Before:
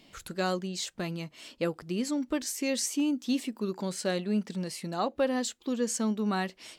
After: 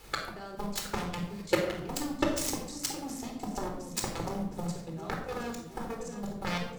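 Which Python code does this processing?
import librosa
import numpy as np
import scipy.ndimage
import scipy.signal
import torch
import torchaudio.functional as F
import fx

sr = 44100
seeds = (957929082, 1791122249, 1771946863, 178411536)

p1 = fx.wiener(x, sr, points=15)
p2 = fx.doppler_pass(p1, sr, speed_mps=23, closest_m=15.0, pass_at_s=2.01)
p3 = fx.highpass(p2, sr, hz=200.0, slope=6)
p4 = fx.over_compress(p3, sr, threshold_db=-46.0, ratio=-1.0)
p5 = p3 + (p4 * 10.0 ** (2.0 / 20.0))
p6 = fx.transient(p5, sr, attack_db=12, sustain_db=-3)
p7 = fx.level_steps(p6, sr, step_db=19)
p8 = fx.dmg_noise_colour(p7, sr, seeds[0], colour='pink', level_db=-58.0)
p9 = fx.step_gate(p8, sr, bpm=159, pattern='xxx...x.xxx.', floor_db=-12.0, edge_ms=4.5)
p10 = fx.transient(p9, sr, attack_db=3, sustain_db=-7)
p11 = p10 + fx.echo_feedback(p10, sr, ms=716, feedback_pct=39, wet_db=-13.5, dry=0)
p12 = fx.cheby_harmonics(p11, sr, harmonics=(7,), levels_db=(-11,), full_scale_db=-19.5)
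p13 = fx.room_shoebox(p12, sr, seeds[1], volume_m3=1900.0, walls='furnished', distance_m=4.1)
y = p13 * 10.0 ** (4.0 / 20.0)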